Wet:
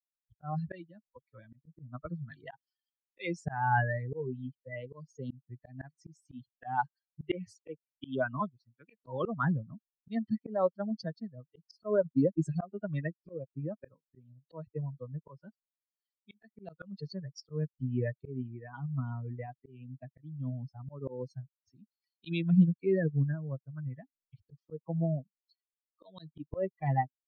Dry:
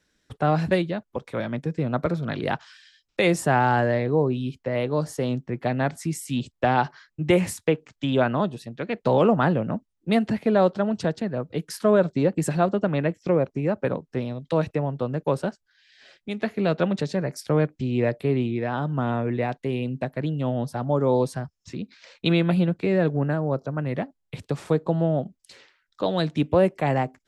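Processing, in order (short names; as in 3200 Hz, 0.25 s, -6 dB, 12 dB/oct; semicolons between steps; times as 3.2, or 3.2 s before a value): per-bin expansion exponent 3; LPF 4700 Hz 24 dB/oct; auto swell 0.298 s; gain +3 dB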